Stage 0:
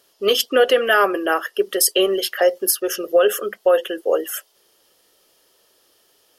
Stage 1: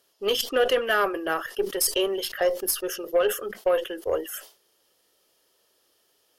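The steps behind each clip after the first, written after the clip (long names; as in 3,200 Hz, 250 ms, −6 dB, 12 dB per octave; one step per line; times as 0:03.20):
harmonic generator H 3 −18 dB, 5 −33 dB, 6 −31 dB, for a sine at −3.5 dBFS
level that may fall only so fast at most 150 dB per second
level −5 dB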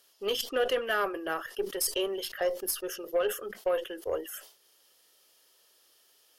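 one half of a high-frequency compander encoder only
level −6 dB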